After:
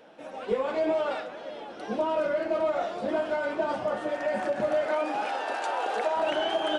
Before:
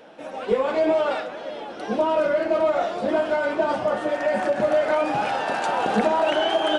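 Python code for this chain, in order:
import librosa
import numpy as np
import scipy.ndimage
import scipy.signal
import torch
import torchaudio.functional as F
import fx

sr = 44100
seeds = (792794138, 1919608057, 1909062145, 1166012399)

y = fx.highpass(x, sr, hz=fx.line((4.87, 200.0), (6.15, 440.0)), slope=24, at=(4.87, 6.15), fade=0.02)
y = y * 10.0 ** (-6.0 / 20.0)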